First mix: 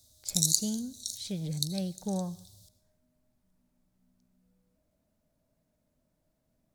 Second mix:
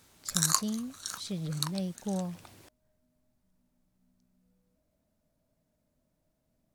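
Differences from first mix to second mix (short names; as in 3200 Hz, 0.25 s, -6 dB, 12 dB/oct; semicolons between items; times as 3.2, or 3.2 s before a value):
background: remove Chebyshev band-stop 120–3700 Hz, order 5; reverb: off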